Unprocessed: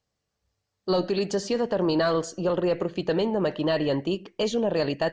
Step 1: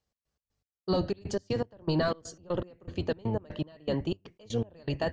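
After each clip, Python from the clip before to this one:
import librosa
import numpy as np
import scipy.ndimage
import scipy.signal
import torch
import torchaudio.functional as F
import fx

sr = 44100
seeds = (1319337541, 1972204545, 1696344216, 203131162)

y = fx.octave_divider(x, sr, octaves=1, level_db=1.0)
y = fx.step_gate(y, sr, bpm=120, pattern='x.x.x..x', floor_db=-24.0, edge_ms=4.5)
y = y * librosa.db_to_amplitude(-5.0)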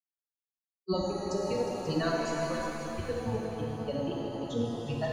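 y = fx.bin_expand(x, sr, power=3.0)
y = fx.echo_heads(y, sr, ms=179, heads='second and third', feedback_pct=43, wet_db=-10)
y = fx.rev_shimmer(y, sr, seeds[0], rt60_s=2.7, semitones=7, shimmer_db=-8, drr_db=-2.5)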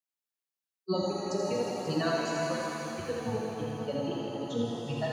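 y = scipy.signal.sosfilt(scipy.signal.butter(4, 110.0, 'highpass', fs=sr, output='sos'), x)
y = fx.echo_thinned(y, sr, ms=82, feedback_pct=70, hz=880.0, wet_db=-5.0)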